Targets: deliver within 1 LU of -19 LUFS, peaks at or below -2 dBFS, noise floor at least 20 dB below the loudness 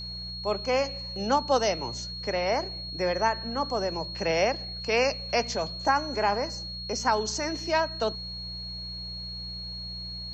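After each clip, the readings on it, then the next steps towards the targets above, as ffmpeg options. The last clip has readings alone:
hum 60 Hz; harmonics up to 180 Hz; hum level -39 dBFS; steady tone 4300 Hz; tone level -36 dBFS; loudness -28.5 LUFS; peak -12.5 dBFS; loudness target -19.0 LUFS
-> -af "bandreject=f=60:t=h:w=4,bandreject=f=120:t=h:w=4,bandreject=f=180:t=h:w=4"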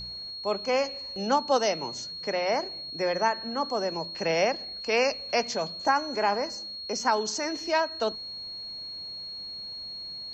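hum none; steady tone 4300 Hz; tone level -36 dBFS
-> -af "bandreject=f=4.3k:w=30"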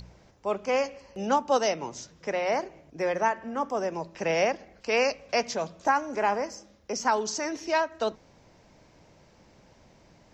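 steady tone none; loudness -28.5 LUFS; peak -12.5 dBFS; loudness target -19.0 LUFS
-> -af "volume=9.5dB"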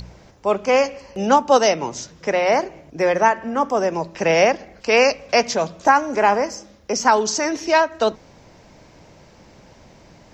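loudness -19.0 LUFS; peak -3.0 dBFS; noise floor -49 dBFS

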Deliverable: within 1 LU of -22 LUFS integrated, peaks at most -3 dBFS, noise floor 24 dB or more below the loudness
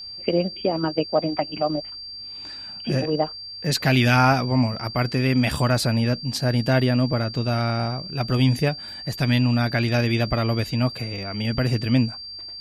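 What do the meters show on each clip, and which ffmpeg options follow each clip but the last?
steady tone 4700 Hz; tone level -34 dBFS; loudness -22.5 LUFS; peak -4.5 dBFS; loudness target -22.0 LUFS
-> -af "bandreject=f=4.7k:w=30"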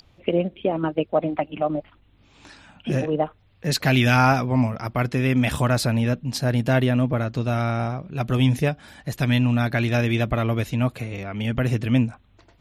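steady tone none; loudness -23.0 LUFS; peak -5.0 dBFS; loudness target -22.0 LUFS
-> -af "volume=1dB"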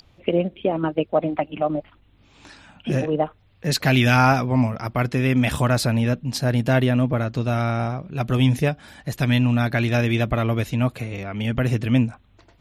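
loudness -22.0 LUFS; peak -4.0 dBFS; noise floor -56 dBFS

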